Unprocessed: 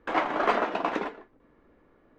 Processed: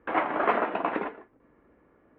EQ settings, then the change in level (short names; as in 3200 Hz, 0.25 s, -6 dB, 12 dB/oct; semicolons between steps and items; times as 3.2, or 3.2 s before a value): HPF 45 Hz; LPF 2700 Hz 24 dB/oct; 0.0 dB